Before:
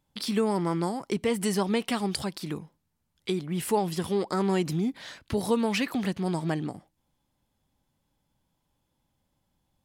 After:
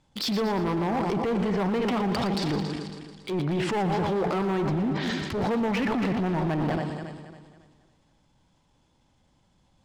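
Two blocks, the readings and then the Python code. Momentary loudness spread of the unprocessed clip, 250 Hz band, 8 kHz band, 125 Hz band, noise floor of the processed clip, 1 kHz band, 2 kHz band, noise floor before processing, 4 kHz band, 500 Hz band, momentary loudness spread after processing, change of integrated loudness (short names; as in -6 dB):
9 LU, +2.0 dB, -7.0 dB, +3.5 dB, -66 dBFS, +4.0 dB, +3.5 dB, -77 dBFS, +1.5 dB, +1.5 dB, 7 LU, +1.5 dB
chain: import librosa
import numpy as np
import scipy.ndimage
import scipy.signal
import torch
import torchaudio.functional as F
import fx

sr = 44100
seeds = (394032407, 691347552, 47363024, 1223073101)

p1 = fx.reverse_delay_fb(x, sr, ms=138, feedback_pct=59, wet_db=-11.0)
p2 = fx.env_lowpass_down(p1, sr, base_hz=2000.0, full_db=-24.0)
p3 = scipy.signal.sosfilt(scipy.signal.butter(4, 7900.0, 'lowpass', fs=sr, output='sos'), p2)
p4 = fx.dynamic_eq(p3, sr, hz=670.0, q=0.92, threshold_db=-41.0, ratio=4.0, max_db=4)
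p5 = fx.over_compress(p4, sr, threshold_db=-31.0, ratio=-0.5)
p6 = p4 + (p5 * librosa.db_to_amplitude(1.0))
p7 = np.clip(p6, -10.0 ** (-22.5 / 20.0), 10.0 ** (-22.5 / 20.0))
p8 = p7 + fx.echo_thinned(p7, sr, ms=117, feedback_pct=50, hz=420.0, wet_db=-12.5, dry=0)
p9 = fx.transient(p8, sr, attack_db=-6, sustain_db=-1)
y = fx.sustainer(p9, sr, db_per_s=39.0)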